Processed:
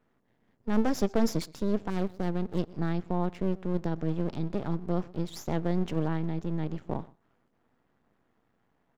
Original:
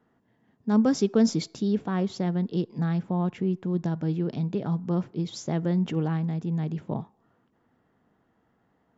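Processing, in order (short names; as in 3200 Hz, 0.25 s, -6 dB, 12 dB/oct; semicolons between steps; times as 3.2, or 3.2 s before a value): 1.9–2.59 median filter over 41 samples; outdoor echo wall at 21 m, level -22 dB; half-wave rectifier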